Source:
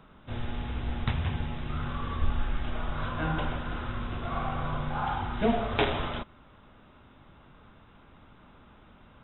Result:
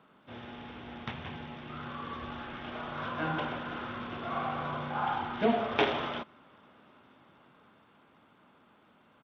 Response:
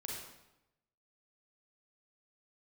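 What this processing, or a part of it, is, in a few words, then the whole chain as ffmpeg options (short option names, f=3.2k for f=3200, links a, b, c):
Bluetooth headset: -af "highpass=200,dynaudnorm=f=210:g=21:m=4.5dB,aresample=8000,aresample=44100,volume=-4.5dB" -ar 32000 -c:a sbc -b:a 64k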